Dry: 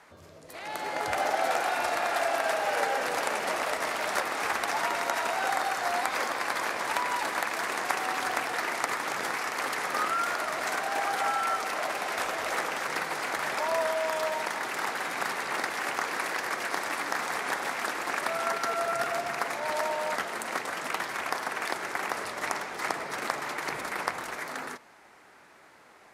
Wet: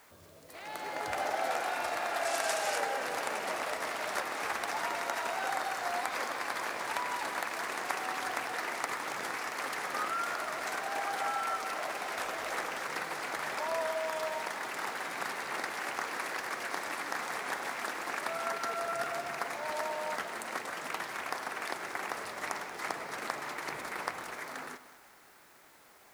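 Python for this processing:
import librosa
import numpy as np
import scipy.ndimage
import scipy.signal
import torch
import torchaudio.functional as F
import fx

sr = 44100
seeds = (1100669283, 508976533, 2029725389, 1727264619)

p1 = fx.peak_eq(x, sr, hz=7500.0, db=11.5, octaves=1.8, at=(2.25, 2.78))
p2 = fx.quant_dither(p1, sr, seeds[0], bits=8, dither='triangular')
p3 = p1 + (p2 * 10.0 ** (-7.5 / 20.0))
p4 = fx.echo_split(p3, sr, split_hz=670.0, low_ms=110, high_ms=183, feedback_pct=52, wet_db=-15.0)
y = p4 * 10.0 ** (-8.5 / 20.0)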